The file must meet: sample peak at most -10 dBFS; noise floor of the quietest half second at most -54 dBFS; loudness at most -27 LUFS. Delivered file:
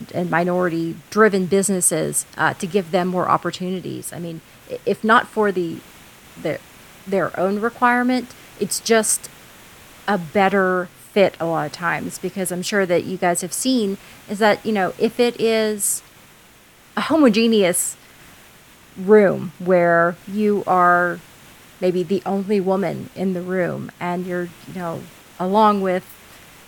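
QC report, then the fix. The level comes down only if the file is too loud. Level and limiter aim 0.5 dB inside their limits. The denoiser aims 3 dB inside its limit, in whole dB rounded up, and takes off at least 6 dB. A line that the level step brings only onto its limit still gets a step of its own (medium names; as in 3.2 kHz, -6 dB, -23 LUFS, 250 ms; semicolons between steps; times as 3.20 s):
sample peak -1.5 dBFS: fail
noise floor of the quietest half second -49 dBFS: fail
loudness -19.5 LUFS: fail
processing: trim -8 dB; peak limiter -10.5 dBFS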